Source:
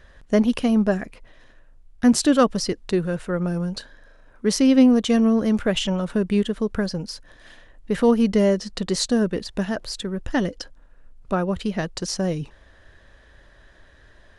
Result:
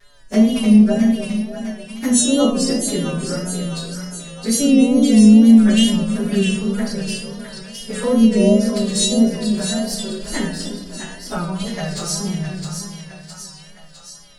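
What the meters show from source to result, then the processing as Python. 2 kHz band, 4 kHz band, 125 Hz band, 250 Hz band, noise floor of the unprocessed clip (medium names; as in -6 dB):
+2.0 dB, +6.0 dB, +5.5 dB, +6.5 dB, -52 dBFS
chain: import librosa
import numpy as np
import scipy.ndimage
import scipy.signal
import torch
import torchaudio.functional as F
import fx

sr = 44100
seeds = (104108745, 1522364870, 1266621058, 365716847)

y = fx.freq_snap(x, sr, grid_st=2)
y = fx.env_flanger(y, sr, rest_ms=7.6, full_db=-15.0)
y = fx.high_shelf(y, sr, hz=3900.0, db=6.0)
y = fx.echo_split(y, sr, split_hz=650.0, low_ms=299, high_ms=660, feedback_pct=52, wet_db=-7)
y = fx.room_shoebox(y, sr, seeds[0], volume_m3=260.0, walls='mixed', distance_m=1.3)
y = fx.dynamic_eq(y, sr, hz=5500.0, q=1.0, threshold_db=-32.0, ratio=4.0, max_db=-5)
y = fx.wow_flutter(y, sr, seeds[1], rate_hz=2.1, depth_cents=68.0)
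y = y * 10.0 ** (-2.5 / 20.0)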